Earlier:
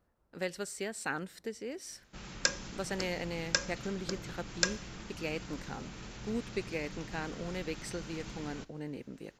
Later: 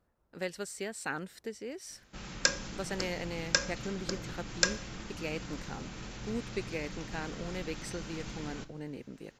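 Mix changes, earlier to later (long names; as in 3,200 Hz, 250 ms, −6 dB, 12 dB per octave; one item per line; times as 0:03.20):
speech: send off
background: send +11.0 dB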